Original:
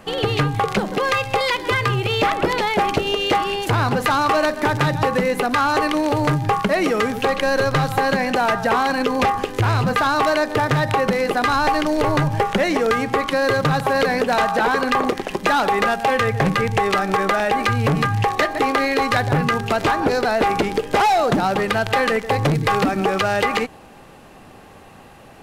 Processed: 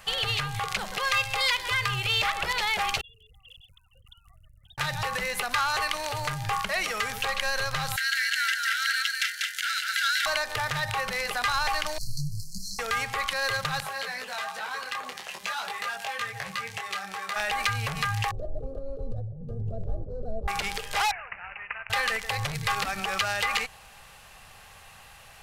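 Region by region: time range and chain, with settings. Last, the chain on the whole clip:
3.01–4.78 s: formants replaced by sine waves + inverse Chebyshev band-stop 570–2500 Hz, stop band 80 dB + level flattener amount 100%
7.96–10.26 s: brick-wall FIR high-pass 1.3 kHz + band-stop 2.5 kHz, Q 8.2 + delay 193 ms -4 dB
11.98–12.79 s: brick-wall FIR band-stop 230–4100 Hz + comb 6.2 ms, depth 41% + detune thickener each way 46 cents
13.80–17.36 s: high-pass 150 Hz + compression 3:1, threshold -22 dBFS + detune thickener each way 16 cents
18.31–20.48 s: elliptic low-pass 590 Hz + bass shelf 160 Hz +12 dB + compressor with a negative ratio -22 dBFS
21.11–21.90 s: pre-emphasis filter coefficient 0.97 + careless resampling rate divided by 8×, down none, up filtered
whole clip: peak limiter -13.5 dBFS; amplifier tone stack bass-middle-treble 10-0-10; trim +3.5 dB

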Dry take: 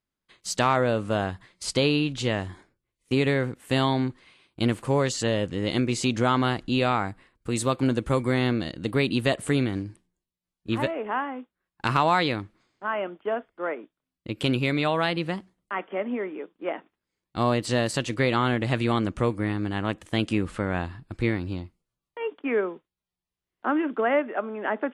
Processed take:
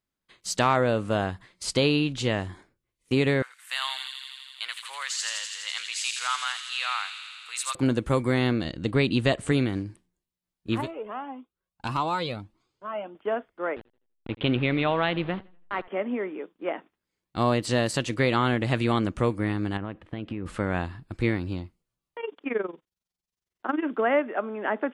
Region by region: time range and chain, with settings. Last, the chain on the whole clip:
3.42–7.75 s: high-pass 1.2 kHz 24 dB/octave + feedback echo behind a high-pass 83 ms, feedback 81%, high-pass 3.1 kHz, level -3 dB
8.64–9.52 s: low-pass 8.7 kHz 24 dB/octave + bass shelf 80 Hz +8.5 dB
10.81–13.15 s: peaking EQ 1.8 kHz -10 dB 0.6 oct + Shepard-style flanger rising 1.7 Hz
13.76–15.88 s: send-on-delta sampling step -35 dBFS + steep low-pass 3.7 kHz 48 dB/octave + modulated delay 83 ms, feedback 34%, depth 96 cents, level -22.5 dB
19.77–20.46 s: compression 12:1, threshold -27 dBFS + distance through air 420 m
22.20–23.83 s: peaking EQ 5.9 kHz +7.5 dB 1.1 oct + AM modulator 22 Hz, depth 75%
whole clip: none

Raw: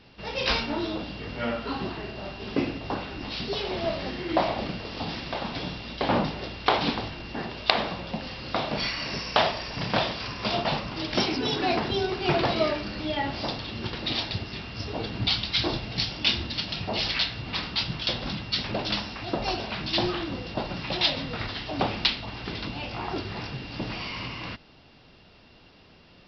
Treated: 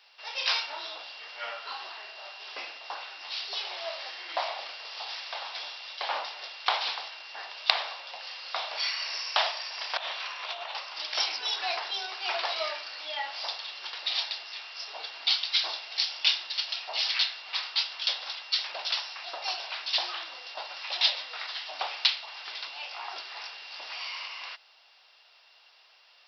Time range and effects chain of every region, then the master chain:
9.97–10.75 s: peaking EQ 5 kHz -13 dB 0.35 oct + compressor with a negative ratio -31 dBFS
whole clip: high-pass 710 Hz 24 dB/octave; treble shelf 3.9 kHz +9.5 dB; trim -4.5 dB

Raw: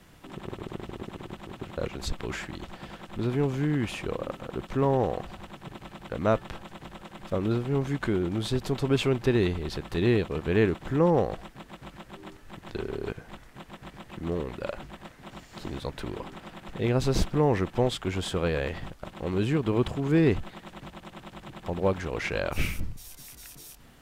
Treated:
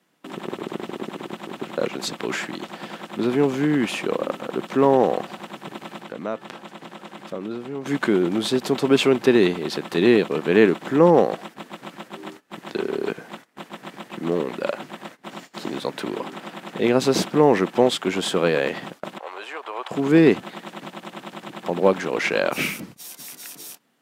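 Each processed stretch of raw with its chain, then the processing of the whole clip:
6.00–7.86 s: treble shelf 11 kHz -6 dB + compression 2:1, threshold -42 dBFS
19.18–19.91 s: high-pass 700 Hz 24 dB/octave + treble shelf 2.2 kHz -11.5 dB + tape noise reduction on one side only decoder only
whole clip: high-pass 190 Hz 24 dB/octave; gate -49 dBFS, range -19 dB; trim +8.5 dB

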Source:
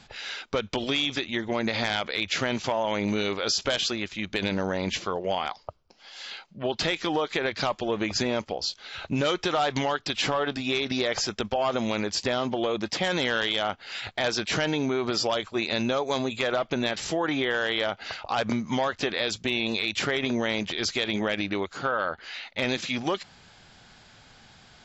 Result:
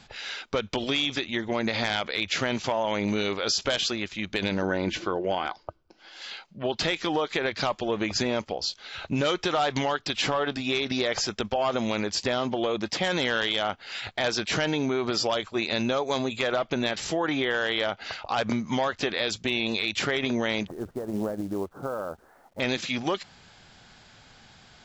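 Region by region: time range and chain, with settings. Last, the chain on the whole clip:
4.62–6.22 s: treble shelf 4.6 kHz -8 dB + small resonant body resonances 330/1500 Hz, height 13 dB, ringing for 85 ms
20.67–22.60 s: Bessel low-pass 730 Hz, order 8 + companded quantiser 6-bit
whole clip: none

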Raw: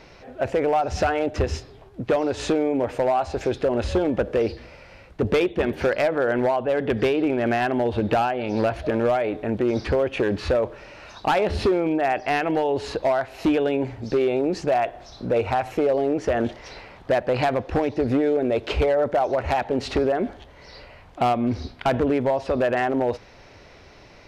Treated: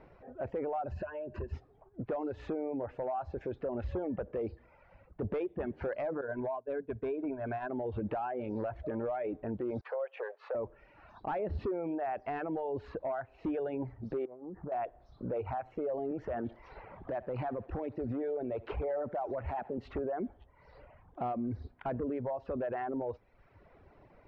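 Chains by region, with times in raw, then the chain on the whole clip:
0.91–1.53 s: rippled EQ curve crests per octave 1.4, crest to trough 12 dB + compression 4:1, threshold -28 dBFS
6.21–7.70 s: expander -18 dBFS + rippled EQ curve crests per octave 1.6, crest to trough 9 dB
9.81–10.55 s: elliptic high-pass 490 Hz, stop band 50 dB + expander -37 dBFS
14.25–14.72 s: low-pass 1.6 kHz 24 dB/octave + compression 20:1, threshold -28 dBFS + loudspeaker Doppler distortion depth 0.3 ms
16.11–19.78 s: thinning echo 73 ms, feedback 53%, high-pass 490 Hz, level -12 dB + three bands compressed up and down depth 40%
whole clip: reverb removal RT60 0.92 s; low-pass 1.3 kHz 12 dB/octave; peak limiter -21 dBFS; trim -7.5 dB

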